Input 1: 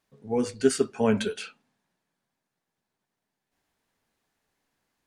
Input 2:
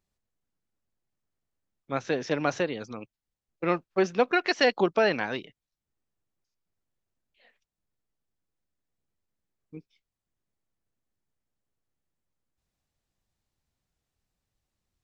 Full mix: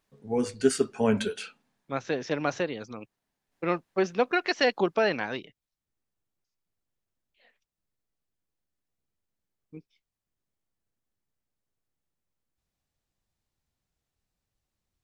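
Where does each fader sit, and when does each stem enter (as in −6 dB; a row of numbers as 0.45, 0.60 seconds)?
−1.0, −1.5 decibels; 0.00, 0.00 seconds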